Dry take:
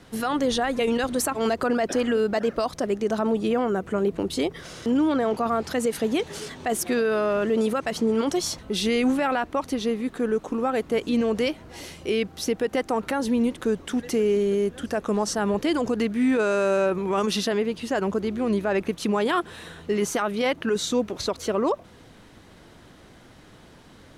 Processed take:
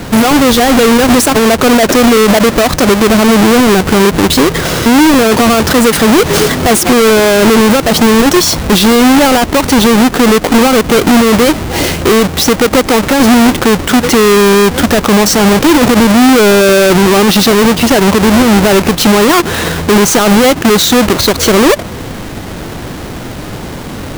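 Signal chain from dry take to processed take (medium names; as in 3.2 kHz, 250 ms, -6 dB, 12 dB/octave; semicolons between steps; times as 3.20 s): square wave that keeps the level; loudness maximiser +25 dB; trim -2.5 dB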